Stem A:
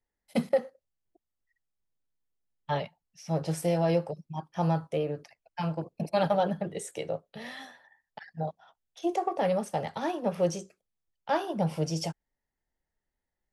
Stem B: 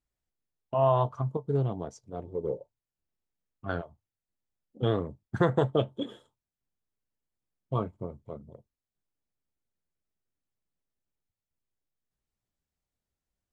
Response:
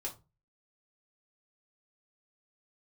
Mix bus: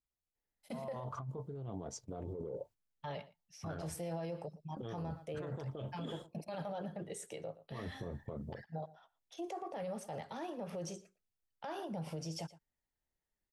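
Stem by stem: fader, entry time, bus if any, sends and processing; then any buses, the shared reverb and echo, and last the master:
−6.5 dB, 0.35 s, no send, echo send −21.5 dB, no processing
0.0 dB, 0.00 s, no send, no echo send, noise gate −54 dBFS, range −15 dB; brickwall limiter −21.5 dBFS, peak gain reduction 10 dB; compressor whose output falls as the input rises −39 dBFS, ratio −1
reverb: not used
echo: single-tap delay 116 ms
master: brickwall limiter −34 dBFS, peak gain reduction 13.5 dB

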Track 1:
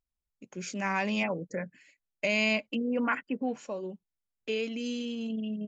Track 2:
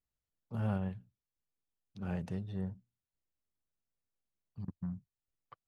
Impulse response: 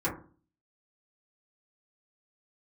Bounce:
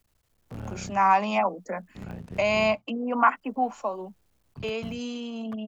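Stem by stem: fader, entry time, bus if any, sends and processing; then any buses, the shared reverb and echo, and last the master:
0.0 dB, 0.15 s, no send, Butterworth high-pass 180 Hz 96 dB per octave; flat-topped bell 930 Hz +14 dB 1.2 octaves
+1.0 dB, 0.00 s, no send, sub-harmonics by changed cycles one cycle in 3, muted; multiband upward and downward compressor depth 70%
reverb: not used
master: no processing

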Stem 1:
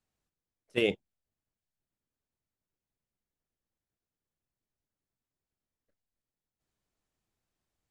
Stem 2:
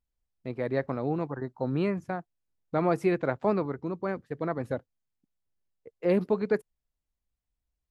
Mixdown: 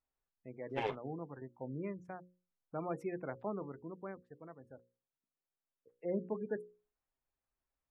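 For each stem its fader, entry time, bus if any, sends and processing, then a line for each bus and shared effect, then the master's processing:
−1.5 dB, 0.00 s, no send, lower of the sound and its delayed copy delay 7.5 ms; low-pass filter 1,200 Hz 12 dB per octave; spectral tilt +4 dB per octave
0:04.04 −13 dB → 0:04.56 −22.5 dB → 0:05.62 −22.5 dB → 0:06.08 −11 dB, 0.00 s, no send, gate on every frequency bin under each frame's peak −25 dB strong; mains-hum notches 60/120/180/240/300/360/420/480/540 Hz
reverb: not used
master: no processing

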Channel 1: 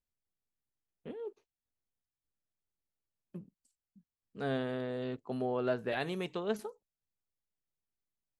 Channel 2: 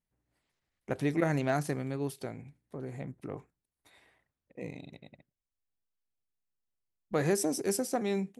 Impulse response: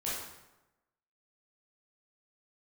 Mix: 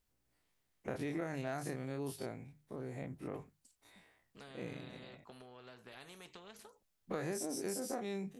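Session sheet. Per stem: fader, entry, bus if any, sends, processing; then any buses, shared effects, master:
−1.0 dB, 0.00 s, no send, downward compressor 12 to 1, threshold −42 dBFS, peak gain reduction 16 dB; flanger 0.28 Hz, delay 2.6 ms, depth 8.6 ms, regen −79%; every bin compressed towards the loudest bin 2 to 1
−6.0 dB, 0.00 s, no send, every bin's largest magnitude spread in time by 60 ms; mains-hum notches 50/100/150 Hz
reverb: not used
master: downward compressor 6 to 1, threshold −36 dBFS, peak gain reduction 10 dB

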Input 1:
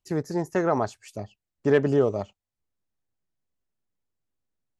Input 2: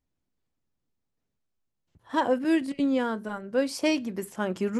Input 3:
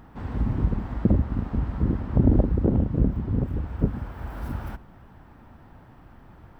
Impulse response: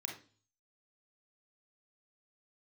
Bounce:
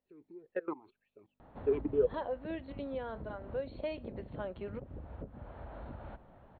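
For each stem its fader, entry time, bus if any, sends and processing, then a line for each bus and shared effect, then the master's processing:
0.0 dB, 0.00 s, no bus, no send, output level in coarse steps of 22 dB; mains hum 50 Hz, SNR 31 dB; formant filter swept between two vowels e-u 1.9 Hz
−6.0 dB, 0.00 s, bus A, no send, low-shelf EQ 320 Hz −10 dB
−11.0 dB, 1.40 s, bus A, no send, downward compressor, threshold −26 dBFS, peak gain reduction 12.5 dB
bus A: 0.0 dB, parametric band 590 Hz +12 dB 0.89 octaves; downward compressor 2 to 1, threshold −44 dBFS, peak gain reduction 13.5 dB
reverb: not used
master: linear-phase brick-wall low-pass 4,400 Hz

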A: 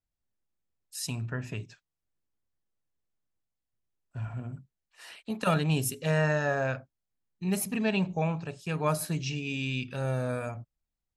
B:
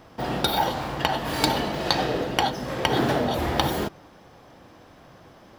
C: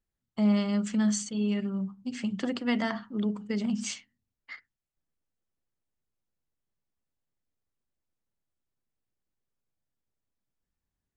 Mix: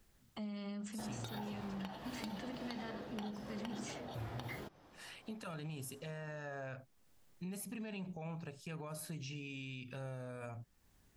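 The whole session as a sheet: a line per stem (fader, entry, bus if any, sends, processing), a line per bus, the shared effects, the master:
0.0 dB, 0.00 s, bus A, no send, no processing
−9.5 dB, 0.80 s, no bus, no send, downward compressor, threshold −26 dBFS, peak gain reduction 10 dB
−2.5 dB, 0.00 s, bus A, no send, multiband upward and downward compressor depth 70%
bus A: 0.0 dB, brickwall limiter −28.5 dBFS, peak gain reduction 14.5 dB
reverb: not used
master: downward compressor 1.5 to 1, threshold −58 dBFS, peak gain reduction 10.5 dB

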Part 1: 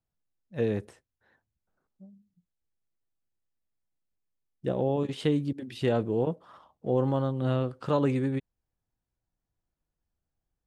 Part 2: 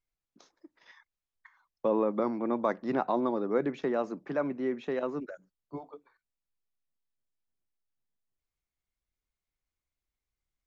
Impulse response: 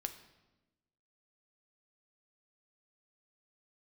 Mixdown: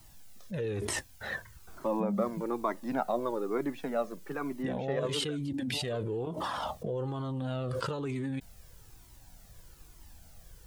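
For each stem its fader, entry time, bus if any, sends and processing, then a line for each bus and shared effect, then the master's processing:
−7.5 dB, 0.00 s, no send, high-shelf EQ 3,200 Hz +8 dB; envelope flattener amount 100%
+2.5 dB, 0.00 s, no send, no processing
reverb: not used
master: flanger whose copies keep moving one way falling 1.1 Hz

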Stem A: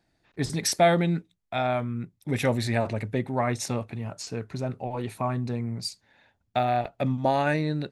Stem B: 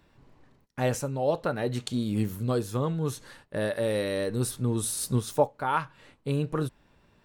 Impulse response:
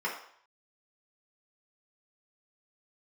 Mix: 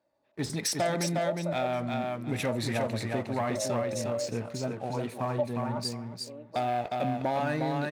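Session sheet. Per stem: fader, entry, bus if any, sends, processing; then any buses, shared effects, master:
−8.5 dB, 0.00 s, send −19.5 dB, echo send −4.5 dB, leveller curve on the samples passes 2
−3.0 dB, 0.00 s, no send, echo send −16 dB, resonant band-pass 630 Hz, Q 4.4; comb filter 3.4 ms, depth 64%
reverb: on, RT60 0.60 s, pre-delay 3 ms
echo: repeating echo 358 ms, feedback 20%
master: high-pass filter 140 Hz 6 dB per octave; downward compressor 4 to 1, threshold −25 dBFS, peak gain reduction 6 dB

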